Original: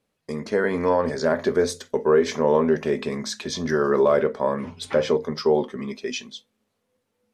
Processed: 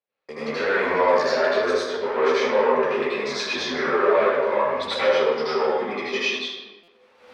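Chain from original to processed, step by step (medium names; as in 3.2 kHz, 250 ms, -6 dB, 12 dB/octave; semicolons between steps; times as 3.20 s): recorder AGC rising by 23 dB/s; 0.57–1.57 s: treble shelf 3.1 kHz +9 dB; waveshaping leveller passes 2; reverberation RT60 1.3 s, pre-delay 74 ms, DRR -11 dB; flange 1.2 Hz, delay 8.4 ms, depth 6.4 ms, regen -41%; three-band isolator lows -19 dB, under 450 Hz, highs -22 dB, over 4.5 kHz; buffer glitch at 6.83 s, samples 256, times 8; trim -7.5 dB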